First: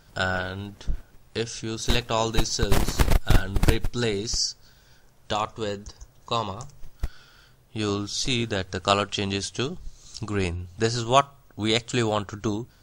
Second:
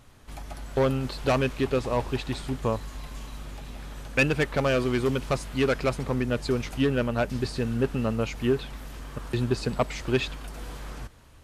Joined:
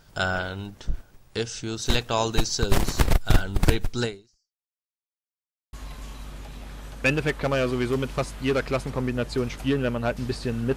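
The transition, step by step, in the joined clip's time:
first
0:04.04–0:04.77: fade out exponential
0:04.77–0:05.73: silence
0:05.73: continue with second from 0:02.86

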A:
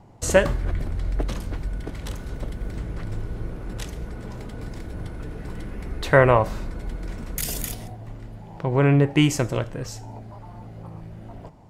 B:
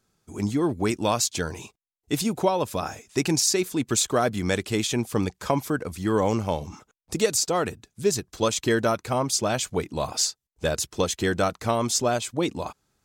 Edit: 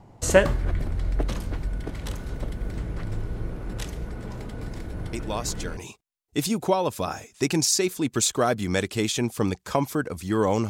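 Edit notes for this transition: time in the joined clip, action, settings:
A
0:05.13: mix in B from 0:00.88 0.64 s −7 dB
0:05.77: continue with B from 0:01.52

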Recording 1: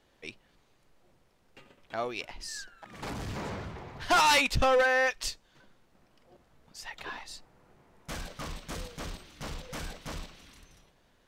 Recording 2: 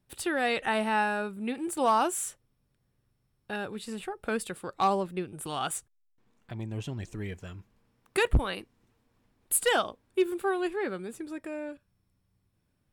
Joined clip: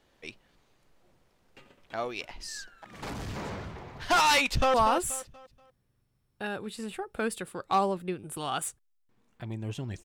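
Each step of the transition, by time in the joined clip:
recording 1
0:04.48–0:04.74: delay throw 240 ms, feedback 35%, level −9 dB
0:04.74: continue with recording 2 from 0:01.83

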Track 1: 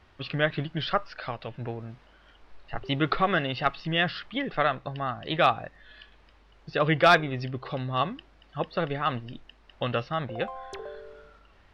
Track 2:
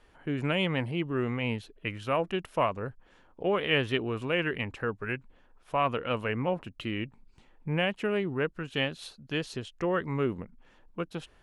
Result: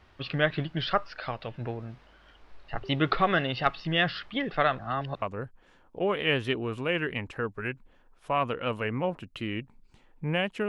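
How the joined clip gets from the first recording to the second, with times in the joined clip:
track 1
0:04.79–0:05.22: reverse
0:05.22: continue with track 2 from 0:02.66

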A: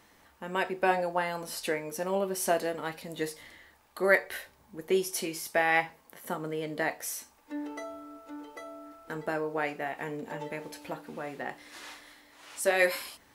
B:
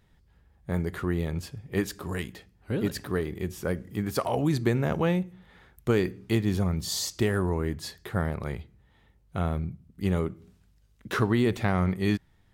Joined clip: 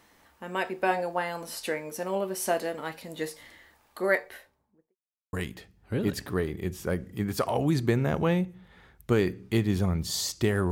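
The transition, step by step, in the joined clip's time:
A
0:03.90–0:04.96: fade out and dull
0:04.96–0:05.33: silence
0:05.33: continue with B from 0:02.11

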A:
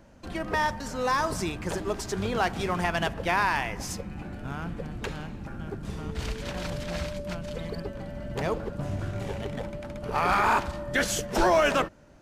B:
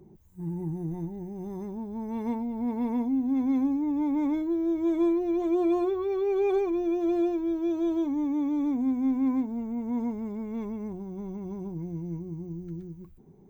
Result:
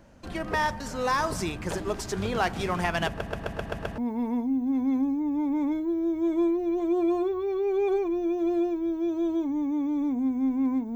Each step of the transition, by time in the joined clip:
A
0:03.07: stutter in place 0.13 s, 7 plays
0:03.98: continue with B from 0:02.60

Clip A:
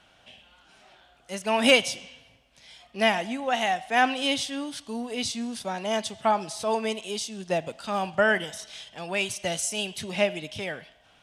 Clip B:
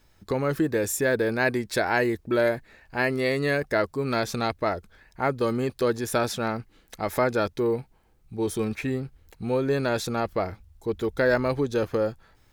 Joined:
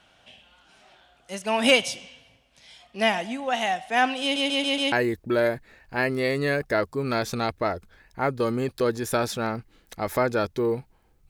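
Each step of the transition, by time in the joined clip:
clip A
0:04.22: stutter in place 0.14 s, 5 plays
0:04.92: continue with clip B from 0:01.93

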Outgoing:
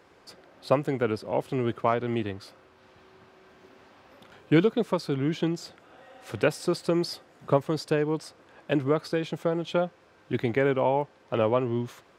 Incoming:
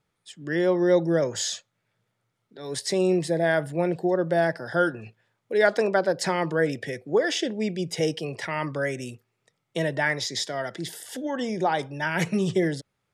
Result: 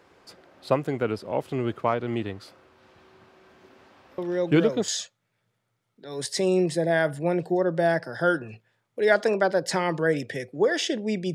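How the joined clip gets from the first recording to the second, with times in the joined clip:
outgoing
0:04.18: mix in incoming from 0:00.71 0.70 s −6.5 dB
0:04.88: continue with incoming from 0:01.41

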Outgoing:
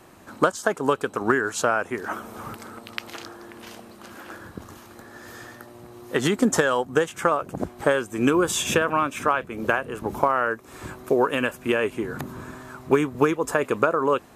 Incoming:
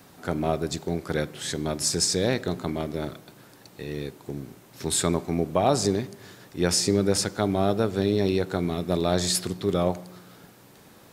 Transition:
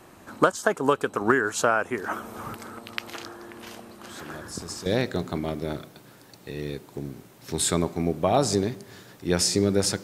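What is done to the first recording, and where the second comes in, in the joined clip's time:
outgoing
0:04.05: mix in incoming from 0:01.37 0.81 s −13.5 dB
0:04.86: continue with incoming from 0:02.18

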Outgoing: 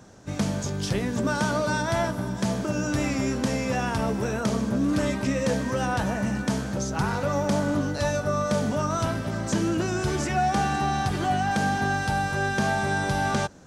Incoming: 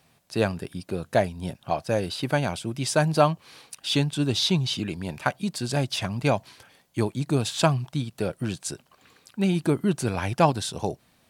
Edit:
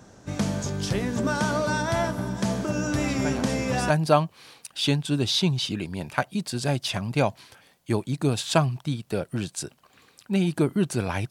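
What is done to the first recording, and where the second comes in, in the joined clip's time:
outgoing
0:03.08: mix in incoming from 0:02.16 0.82 s −7.5 dB
0:03.90: continue with incoming from 0:02.98

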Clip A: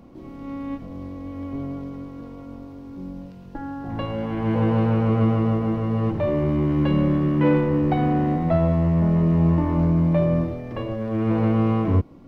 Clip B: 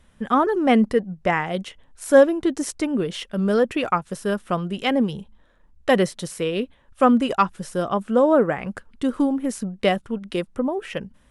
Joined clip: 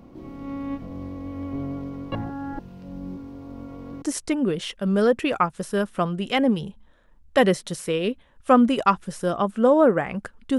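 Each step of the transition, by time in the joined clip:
clip A
0:02.12–0:04.02: reverse
0:04.02: continue with clip B from 0:02.54

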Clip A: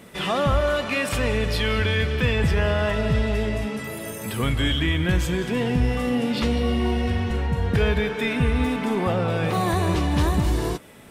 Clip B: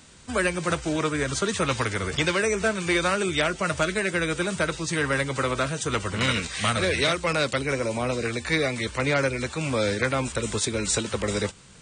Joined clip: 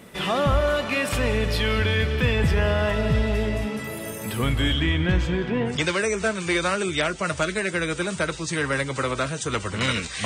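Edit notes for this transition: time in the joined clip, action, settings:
clip A
0:04.73–0:05.80: low-pass filter 9,700 Hz → 1,800 Hz
0:05.72: continue with clip B from 0:02.12, crossfade 0.16 s

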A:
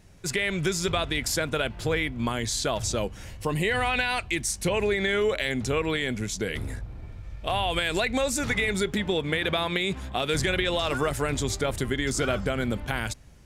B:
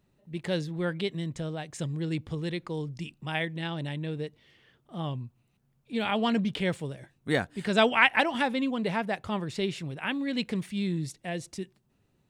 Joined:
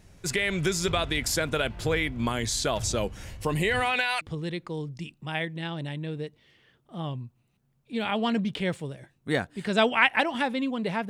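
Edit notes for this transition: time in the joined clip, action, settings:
A
0:03.80–0:04.21: high-pass filter 140 Hz → 870 Hz
0:04.21: continue with B from 0:02.21

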